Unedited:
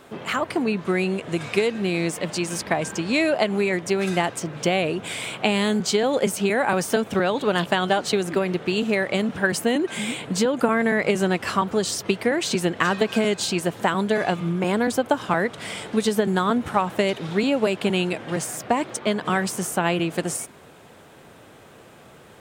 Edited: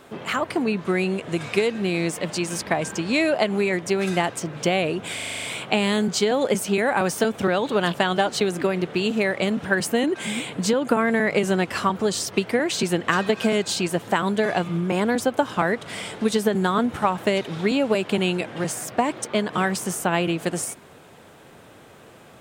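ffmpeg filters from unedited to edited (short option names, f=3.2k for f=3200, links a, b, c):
-filter_complex "[0:a]asplit=8[a][b][c][d][e][f][g][h];[a]atrim=end=5.192[i];[b]atrim=start=5.148:end=5.192[j];[c]atrim=start=5.148:end=5.192[k];[d]atrim=start=5.148:end=5.192[l];[e]atrim=start=5.148:end=5.192[m];[f]atrim=start=5.148:end=5.192[n];[g]atrim=start=5.148:end=5.192[o];[h]atrim=start=5.148[p];[i][j]acrossfade=d=0.004:c1=hsin:c2=hsin[q];[q][k]acrossfade=d=0.004:c1=hsin:c2=hsin[r];[r][l]acrossfade=d=0.004:c1=hsin:c2=hsin[s];[s][m]acrossfade=d=0.004:c1=hsin:c2=hsin[t];[t][n]acrossfade=d=0.004:c1=hsin:c2=hsin[u];[u][o]acrossfade=d=0.004:c1=hsin:c2=hsin[v];[v][p]acrossfade=d=0.004:c1=hsin:c2=hsin"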